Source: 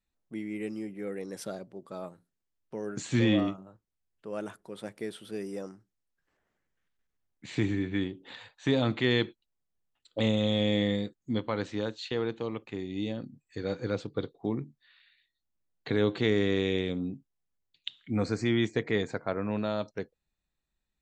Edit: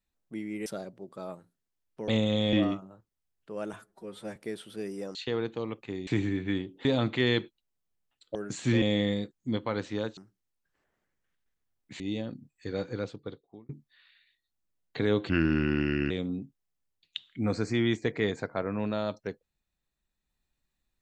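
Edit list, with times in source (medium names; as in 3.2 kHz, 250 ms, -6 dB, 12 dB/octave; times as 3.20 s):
0.66–1.40 s: delete
2.82–3.29 s: swap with 10.19–10.64 s
4.49–4.91 s: stretch 1.5×
5.70–7.53 s: swap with 11.99–12.91 s
8.31–8.69 s: delete
13.66–14.60 s: fade out
16.20–16.82 s: speed 76%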